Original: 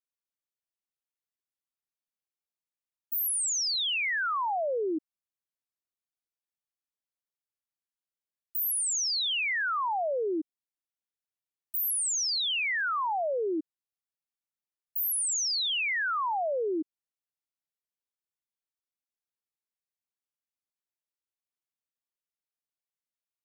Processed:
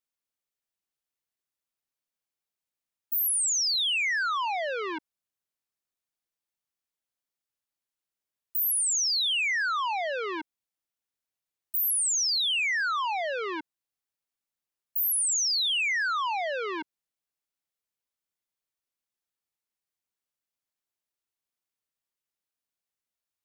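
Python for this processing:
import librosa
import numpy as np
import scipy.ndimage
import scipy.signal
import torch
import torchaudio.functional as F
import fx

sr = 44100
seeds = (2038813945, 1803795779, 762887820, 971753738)

y = fx.transformer_sat(x, sr, knee_hz=1300.0)
y = F.gain(torch.from_numpy(y), 3.0).numpy()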